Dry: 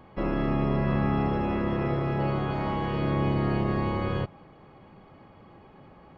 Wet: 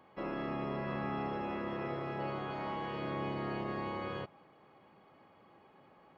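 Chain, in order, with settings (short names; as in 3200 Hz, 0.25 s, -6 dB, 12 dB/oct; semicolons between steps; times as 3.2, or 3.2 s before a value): HPF 400 Hz 6 dB/oct; gain -6.5 dB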